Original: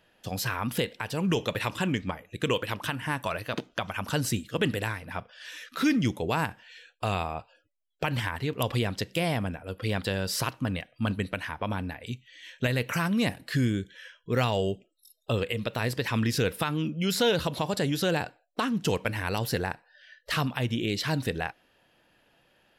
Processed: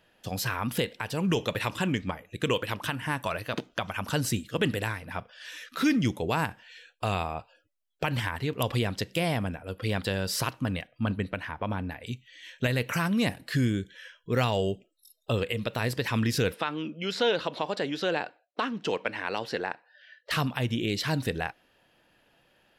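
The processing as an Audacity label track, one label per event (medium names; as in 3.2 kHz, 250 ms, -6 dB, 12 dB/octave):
10.870000	11.910000	peaking EQ 9.6 kHz -10 dB 2.3 oct
16.540000	20.310000	band-pass 300–4100 Hz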